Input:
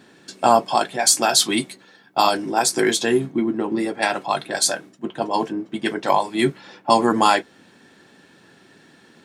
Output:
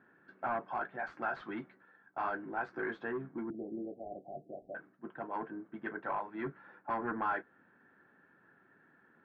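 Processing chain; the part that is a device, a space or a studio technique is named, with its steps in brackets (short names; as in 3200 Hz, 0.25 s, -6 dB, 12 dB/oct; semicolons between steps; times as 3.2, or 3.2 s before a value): overdriven synthesiser ladder filter (soft clip -15 dBFS, distortion -10 dB; ladder low-pass 1700 Hz, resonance 60%); 3.5–4.75 steep low-pass 720 Hz 96 dB/oct; gain -6.5 dB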